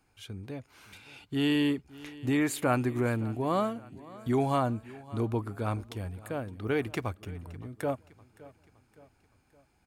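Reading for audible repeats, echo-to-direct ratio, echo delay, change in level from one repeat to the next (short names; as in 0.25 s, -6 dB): 3, -19.0 dB, 0.566 s, -6.0 dB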